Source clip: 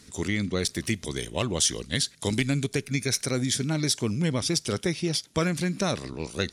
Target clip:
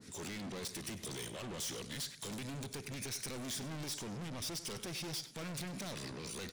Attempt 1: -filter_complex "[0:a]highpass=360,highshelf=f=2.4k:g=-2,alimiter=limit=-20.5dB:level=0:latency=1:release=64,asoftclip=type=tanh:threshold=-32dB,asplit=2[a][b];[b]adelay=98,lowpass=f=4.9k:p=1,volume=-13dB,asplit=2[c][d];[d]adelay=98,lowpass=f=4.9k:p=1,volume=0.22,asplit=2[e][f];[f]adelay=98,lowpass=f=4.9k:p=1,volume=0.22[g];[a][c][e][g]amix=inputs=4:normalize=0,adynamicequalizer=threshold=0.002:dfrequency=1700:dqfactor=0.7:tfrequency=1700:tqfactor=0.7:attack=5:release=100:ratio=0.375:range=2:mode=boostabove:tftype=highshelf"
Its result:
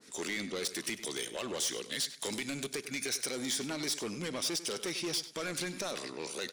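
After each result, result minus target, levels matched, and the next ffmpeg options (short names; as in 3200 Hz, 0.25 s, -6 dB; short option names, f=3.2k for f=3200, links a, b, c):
125 Hz band -10.0 dB; soft clip: distortion -6 dB
-filter_complex "[0:a]highpass=99,highshelf=f=2.4k:g=-2,alimiter=limit=-20.5dB:level=0:latency=1:release=64,asoftclip=type=tanh:threshold=-32dB,asplit=2[a][b];[b]adelay=98,lowpass=f=4.9k:p=1,volume=-13dB,asplit=2[c][d];[d]adelay=98,lowpass=f=4.9k:p=1,volume=0.22,asplit=2[e][f];[f]adelay=98,lowpass=f=4.9k:p=1,volume=0.22[g];[a][c][e][g]amix=inputs=4:normalize=0,adynamicequalizer=threshold=0.002:dfrequency=1700:dqfactor=0.7:tfrequency=1700:tqfactor=0.7:attack=5:release=100:ratio=0.375:range=2:mode=boostabove:tftype=highshelf"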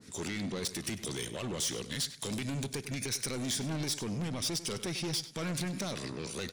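soft clip: distortion -5 dB
-filter_complex "[0:a]highpass=99,highshelf=f=2.4k:g=-2,alimiter=limit=-20.5dB:level=0:latency=1:release=64,asoftclip=type=tanh:threshold=-42dB,asplit=2[a][b];[b]adelay=98,lowpass=f=4.9k:p=1,volume=-13dB,asplit=2[c][d];[d]adelay=98,lowpass=f=4.9k:p=1,volume=0.22,asplit=2[e][f];[f]adelay=98,lowpass=f=4.9k:p=1,volume=0.22[g];[a][c][e][g]amix=inputs=4:normalize=0,adynamicequalizer=threshold=0.002:dfrequency=1700:dqfactor=0.7:tfrequency=1700:tqfactor=0.7:attack=5:release=100:ratio=0.375:range=2:mode=boostabove:tftype=highshelf"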